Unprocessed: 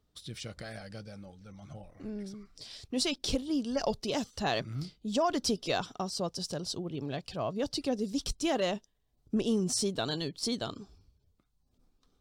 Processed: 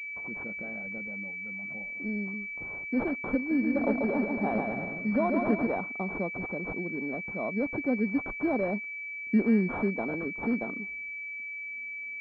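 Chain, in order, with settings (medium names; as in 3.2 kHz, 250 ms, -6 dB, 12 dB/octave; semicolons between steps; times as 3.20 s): resonant low shelf 160 Hz -9 dB, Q 3; 3.37–5.67 s: bouncing-ball echo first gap 140 ms, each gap 0.8×, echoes 5; class-D stage that switches slowly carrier 2.3 kHz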